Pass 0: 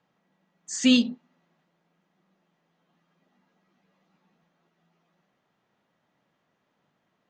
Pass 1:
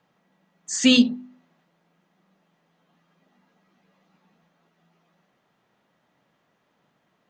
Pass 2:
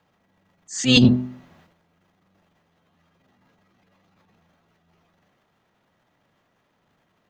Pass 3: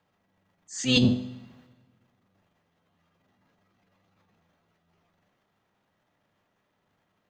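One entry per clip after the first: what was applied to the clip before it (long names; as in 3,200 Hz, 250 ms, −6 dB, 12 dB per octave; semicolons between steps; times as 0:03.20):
hum removal 50.34 Hz, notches 7; level +5 dB
sub-octave generator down 1 octave, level −5 dB; transient designer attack −11 dB, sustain +11 dB; level +1 dB
tuned comb filter 100 Hz, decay 0.54 s, harmonics all, mix 60%; on a send at −23 dB: convolution reverb RT60 1.6 s, pre-delay 99 ms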